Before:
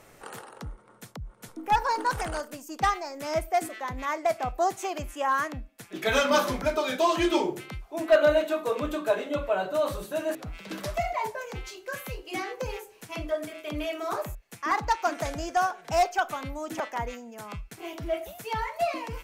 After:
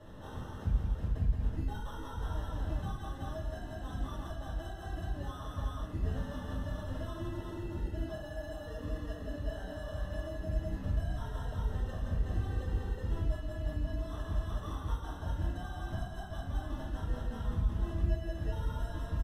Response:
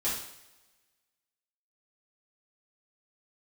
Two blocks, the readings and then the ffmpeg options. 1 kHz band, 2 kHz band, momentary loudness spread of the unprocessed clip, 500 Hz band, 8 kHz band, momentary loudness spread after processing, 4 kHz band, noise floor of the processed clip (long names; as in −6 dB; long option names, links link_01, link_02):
−19.0 dB, −17.0 dB, 16 LU, −17.0 dB, −18.5 dB, 7 LU, −15.5 dB, −44 dBFS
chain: -filter_complex "[0:a]acrusher=samples=19:mix=1:aa=0.000001,aecho=1:1:170|372:0.501|0.562,aresample=32000,aresample=44100,acompressor=threshold=-34dB:ratio=6,bass=frequency=250:gain=11,treble=frequency=4000:gain=-8,acrossover=split=160[link_01][link_02];[link_02]acompressor=threshold=-46dB:ratio=3[link_03];[link_01][link_03]amix=inputs=2:normalize=0[link_04];[1:a]atrim=start_sample=2205[link_05];[link_04][link_05]afir=irnorm=-1:irlink=0,volume=-7dB"